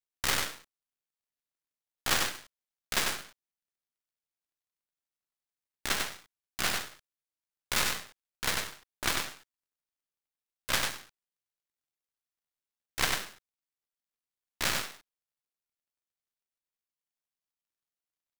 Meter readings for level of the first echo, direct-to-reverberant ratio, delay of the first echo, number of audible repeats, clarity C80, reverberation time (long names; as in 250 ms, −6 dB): −4.0 dB, no reverb audible, 96 ms, 1, no reverb audible, no reverb audible